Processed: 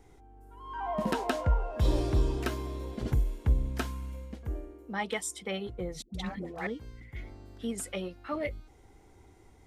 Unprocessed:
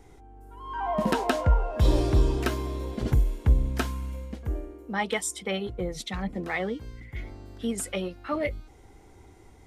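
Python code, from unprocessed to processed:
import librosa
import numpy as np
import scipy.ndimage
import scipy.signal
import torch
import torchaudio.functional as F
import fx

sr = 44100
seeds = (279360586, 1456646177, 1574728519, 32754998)

y = fx.dispersion(x, sr, late='highs', ms=124.0, hz=540.0, at=(6.02, 6.67))
y = y * librosa.db_to_amplitude(-5.0)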